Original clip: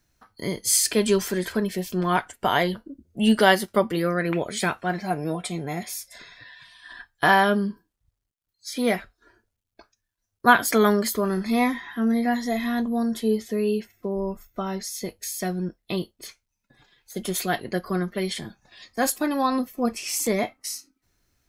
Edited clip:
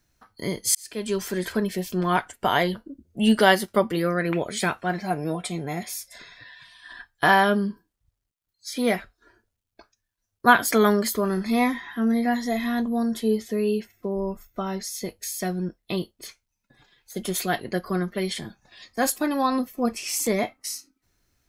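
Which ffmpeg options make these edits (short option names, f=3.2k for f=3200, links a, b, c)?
-filter_complex "[0:a]asplit=2[a][b];[a]atrim=end=0.75,asetpts=PTS-STARTPTS,afade=t=out:st=0.746:d=0.004:c=hsin[c];[b]atrim=start=0.75,asetpts=PTS-STARTPTS,afade=t=in:d=0.73[d];[c][d]concat=n=2:v=0:a=1"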